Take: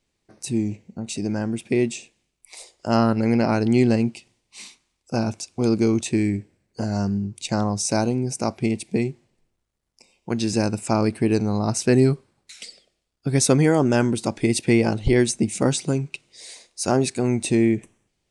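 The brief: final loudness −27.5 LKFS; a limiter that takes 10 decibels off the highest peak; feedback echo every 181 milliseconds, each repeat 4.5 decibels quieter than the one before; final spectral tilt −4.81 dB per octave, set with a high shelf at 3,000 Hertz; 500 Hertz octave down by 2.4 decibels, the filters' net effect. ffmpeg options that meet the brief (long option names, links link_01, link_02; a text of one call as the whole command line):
ffmpeg -i in.wav -af "equalizer=frequency=500:width_type=o:gain=-3.5,highshelf=frequency=3000:gain=4.5,alimiter=limit=-13dB:level=0:latency=1,aecho=1:1:181|362|543|724|905|1086|1267|1448|1629:0.596|0.357|0.214|0.129|0.0772|0.0463|0.0278|0.0167|0.01,volume=-4dB" out.wav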